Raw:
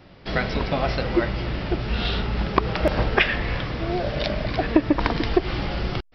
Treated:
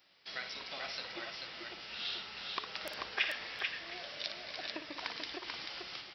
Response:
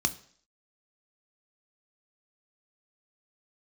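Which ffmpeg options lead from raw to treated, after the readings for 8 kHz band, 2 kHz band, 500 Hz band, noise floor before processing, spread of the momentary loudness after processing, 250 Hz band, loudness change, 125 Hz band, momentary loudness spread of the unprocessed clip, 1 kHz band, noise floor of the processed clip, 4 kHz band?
can't be measured, −12.0 dB, −24.0 dB, −48 dBFS, 9 LU, −29.0 dB, −15.5 dB, −37.5 dB, 7 LU, −18.5 dB, −51 dBFS, −7.0 dB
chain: -af "aderivative,aecho=1:1:57|438|713:0.355|0.631|0.106,volume=-3dB"

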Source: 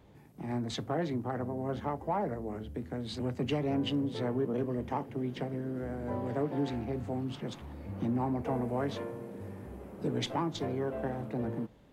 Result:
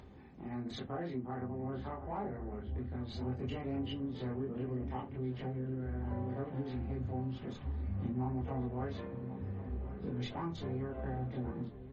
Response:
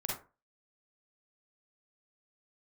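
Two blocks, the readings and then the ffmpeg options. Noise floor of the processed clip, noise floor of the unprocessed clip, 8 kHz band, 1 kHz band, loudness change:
−50 dBFS, −55 dBFS, can't be measured, −7.0 dB, −5.0 dB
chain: -filter_complex "[0:a]highshelf=frequency=5100:gain=-8[link_01];[1:a]atrim=start_sample=2205,asetrate=88200,aresample=44100[link_02];[link_01][link_02]afir=irnorm=-1:irlink=0,acompressor=threshold=-42dB:ratio=1.5,asubboost=boost=3.5:cutoff=130,asplit=2[link_03][link_04];[link_04]adelay=1087,lowpass=frequency=2200:poles=1,volume=-13dB,asplit=2[link_05][link_06];[link_06]adelay=1087,lowpass=frequency=2200:poles=1,volume=0.32,asplit=2[link_07][link_08];[link_08]adelay=1087,lowpass=frequency=2200:poles=1,volume=0.32[link_09];[link_03][link_05][link_07][link_09]amix=inputs=4:normalize=0,acompressor=mode=upward:threshold=-47dB:ratio=2.5" -ar 48000 -c:a libmp3lame -b:a 32k

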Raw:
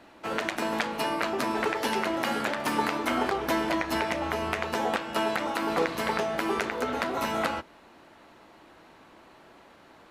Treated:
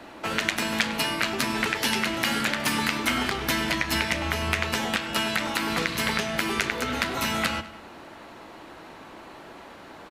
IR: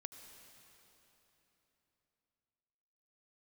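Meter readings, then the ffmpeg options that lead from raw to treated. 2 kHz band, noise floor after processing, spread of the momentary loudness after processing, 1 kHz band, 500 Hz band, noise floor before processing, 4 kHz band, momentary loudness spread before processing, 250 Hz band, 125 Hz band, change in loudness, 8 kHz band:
+5.5 dB, −45 dBFS, 20 LU, −1.5 dB, −3.5 dB, −54 dBFS, +8.5 dB, 2 LU, +1.5 dB, +7.5 dB, +3.0 dB, +9.0 dB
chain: -filter_complex "[0:a]acrossover=split=200|1700[link_01][link_02][link_03];[link_02]acompressor=threshold=-41dB:ratio=12[link_04];[link_01][link_04][link_03]amix=inputs=3:normalize=0,asplit=2[link_05][link_06];[link_06]adelay=100,lowpass=frequency=5000:poles=1,volume=-15dB,asplit=2[link_07][link_08];[link_08]adelay=100,lowpass=frequency=5000:poles=1,volume=0.53,asplit=2[link_09][link_10];[link_10]adelay=100,lowpass=frequency=5000:poles=1,volume=0.53,asplit=2[link_11][link_12];[link_12]adelay=100,lowpass=frequency=5000:poles=1,volume=0.53,asplit=2[link_13][link_14];[link_14]adelay=100,lowpass=frequency=5000:poles=1,volume=0.53[link_15];[link_05][link_07][link_09][link_11][link_13][link_15]amix=inputs=6:normalize=0,volume=9dB"

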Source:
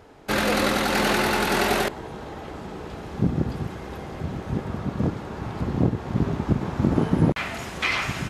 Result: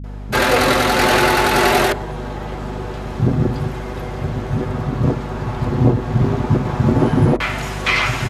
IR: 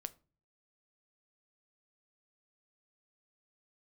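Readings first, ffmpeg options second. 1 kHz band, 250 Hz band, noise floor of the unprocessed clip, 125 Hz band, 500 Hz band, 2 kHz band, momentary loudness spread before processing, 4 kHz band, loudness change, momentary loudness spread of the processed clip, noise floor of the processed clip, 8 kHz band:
+8.5 dB, +5.5 dB, −38 dBFS, +8.5 dB, +8.0 dB, +7.5 dB, 15 LU, +7.0 dB, +6.5 dB, 14 LU, −27 dBFS, +6.5 dB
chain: -filter_complex "[0:a]acrossover=split=210[link_01][link_02];[link_02]adelay=40[link_03];[link_01][link_03]amix=inputs=2:normalize=0,asplit=2[link_04][link_05];[1:a]atrim=start_sample=2205,lowpass=2000,adelay=8[link_06];[link_05][link_06]afir=irnorm=-1:irlink=0,volume=0.5dB[link_07];[link_04][link_07]amix=inputs=2:normalize=0,aeval=exprs='val(0)+0.0178*(sin(2*PI*50*n/s)+sin(2*PI*2*50*n/s)/2+sin(2*PI*3*50*n/s)/3+sin(2*PI*4*50*n/s)/4+sin(2*PI*5*50*n/s)/5)':channel_layout=same,volume=6.5dB"

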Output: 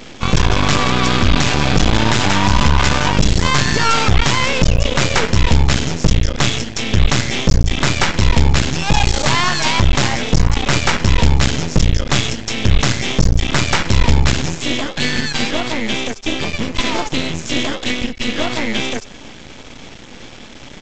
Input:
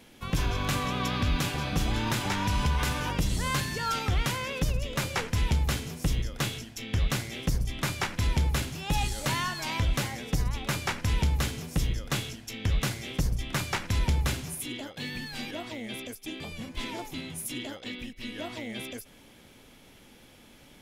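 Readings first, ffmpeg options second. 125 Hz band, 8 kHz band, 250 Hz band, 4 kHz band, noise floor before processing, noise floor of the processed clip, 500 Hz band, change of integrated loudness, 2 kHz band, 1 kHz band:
+13.0 dB, +13.5 dB, +15.0 dB, +16.0 dB, −54 dBFS, −36 dBFS, +15.5 dB, +14.0 dB, +15.0 dB, +14.5 dB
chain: -af "aresample=16000,aeval=exprs='max(val(0),0)':channel_layout=same,aresample=44100,alimiter=level_in=23dB:limit=-1dB:release=50:level=0:latency=1,volume=-1dB"

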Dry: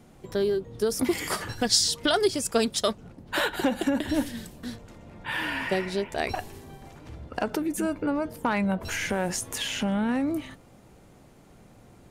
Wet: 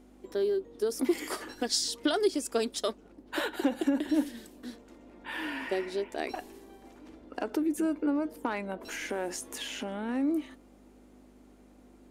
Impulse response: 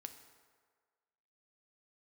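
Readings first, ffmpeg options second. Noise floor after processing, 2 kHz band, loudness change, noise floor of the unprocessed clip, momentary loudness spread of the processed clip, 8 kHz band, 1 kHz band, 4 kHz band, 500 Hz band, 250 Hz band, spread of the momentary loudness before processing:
−57 dBFS, −7.5 dB, −4.5 dB, −54 dBFS, 17 LU, −7.5 dB, −6.5 dB, −7.5 dB, −3.5 dB, −2.5 dB, 16 LU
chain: -af "aeval=exprs='val(0)+0.0112*(sin(2*PI*50*n/s)+sin(2*PI*2*50*n/s)/2+sin(2*PI*3*50*n/s)/3+sin(2*PI*4*50*n/s)/4+sin(2*PI*5*50*n/s)/5)':channel_layout=same,lowshelf=frequency=200:width_type=q:width=3:gain=-13.5,volume=-7.5dB"

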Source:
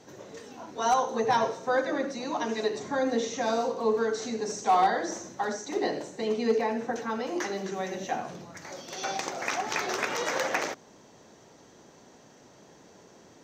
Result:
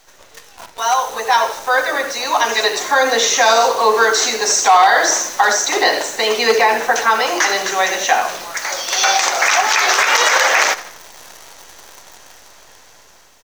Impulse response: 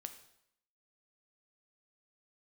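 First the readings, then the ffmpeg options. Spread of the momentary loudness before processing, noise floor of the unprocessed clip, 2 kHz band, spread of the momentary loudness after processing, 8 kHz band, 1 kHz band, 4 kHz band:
11 LU, −55 dBFS, +19.5 dB, 7 LU, +21.5 dB, +14.5 dB, +21.0 dB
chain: -filter_complex "[0:a]highpass=950,dynaudnorm=framelen=880:gausssize=5:maxgain=12.5dB,acrusher=bits=8:dc=4:mix=0:aa=0.000001,asplit=2[link_01][link_02];[link_02]asplit=4[link_03][link_04][link_05][link_06];[link_03]adelay=80,afreqshift=-40,volume=-18dB[link_07];[link_04]adelay=160,afreqshift=-80,volume=-24dB[link_08];[link_05]adelay=240,afreqshift=-120,volume=-30dB[link_09];[link_06]adelay=320,afreqshift=-160,volume=-36.1dB[link_10];[link_07][link_08][link_09][link_10]amix=inputs=4:normalize=0[link_11];[link_01][link_11]amix=inputs=2:normalize=0,alimiter=level_in=13dB:limit=-1dB:release=50:level=0:latency=1,volume=-1.5dB"

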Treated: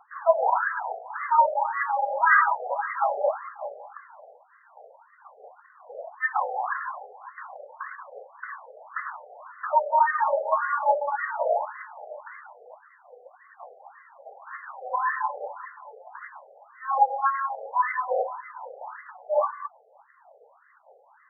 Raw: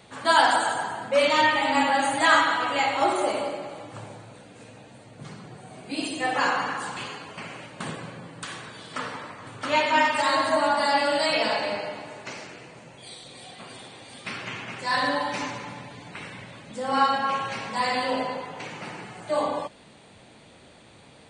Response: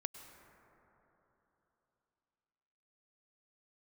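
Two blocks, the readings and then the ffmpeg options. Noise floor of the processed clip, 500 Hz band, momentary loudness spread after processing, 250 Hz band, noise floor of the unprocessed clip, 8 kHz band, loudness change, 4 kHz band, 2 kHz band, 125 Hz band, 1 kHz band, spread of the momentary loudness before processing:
−59 dBFS, −1.5 dB, 21 LU, below −40 dB, −51 dBFS, below −40 dB, −1.0 dB, below −40 dB, −3.0 dB, below −40 dB, 0.0 dB, 21 LU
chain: -af "aphaser=in_gain=1:out_gain=1:delay=2.3:decay=0.51:speed=1.1:type=triangular,afftfilt=real='re*between(b*sr/1024,570*pow(1500/570,0.5+0.5*sin(2*PI*1.8*pts/sr))/1.41,570*pow(1500/570,0.5+0.5*sin(2*PI*1.8*pts/sr))*1.41)':imag='im*between(b*sr/1024,570*pow(1500/570,0.5+0.5*sin(2*PI*1.8*pts/sr))/1.41,570*pow(1500/570,0.5+0.5*sin(2*PI*1.8*pts/sr))*1.41)':win_size=1024:overlap=0.75,volume=1.5dB"

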